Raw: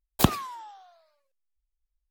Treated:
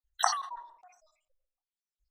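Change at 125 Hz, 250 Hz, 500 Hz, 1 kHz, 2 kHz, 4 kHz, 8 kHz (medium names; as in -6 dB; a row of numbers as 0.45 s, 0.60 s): under -40 dB, under -40 dB, -9.5 dB, +1.0 dB, -0.5 dB, -2.5 dB, +1.0 dB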